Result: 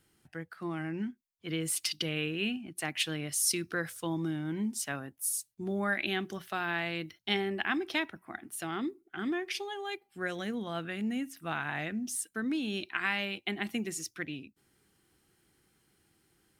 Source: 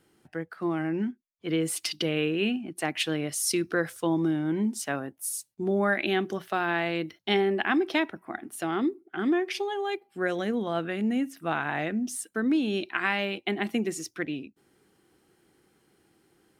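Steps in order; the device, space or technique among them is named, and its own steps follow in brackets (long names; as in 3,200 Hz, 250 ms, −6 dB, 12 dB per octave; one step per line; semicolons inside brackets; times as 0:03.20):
smiley-face EQ (low-shelf EQ 110 Hz +5 dB; parametric band 450 Hz −8.5 dB 2.7 octaves; high-shelf EQ 9,400 Hz +3.5 dB)
level −1.5 dB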